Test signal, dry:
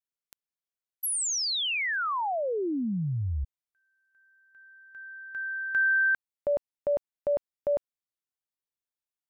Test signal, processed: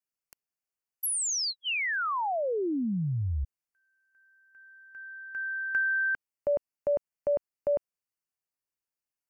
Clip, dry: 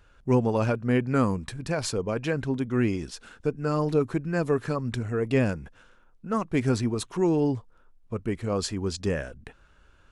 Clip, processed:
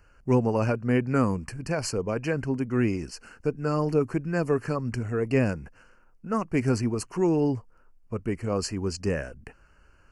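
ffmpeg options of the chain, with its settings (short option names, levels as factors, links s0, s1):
-filter_complex "[0:a]asuperstop=centerf=3600:order=12:qfactor=2.9,acrossover=split=490[s0][s1];[s1]acompressor=threshold=0.0447:ratio=6:attack=71:release=369:knee=2.83:detection=peak[s2];[s0][s2]amix=inputs=2:normalize=0"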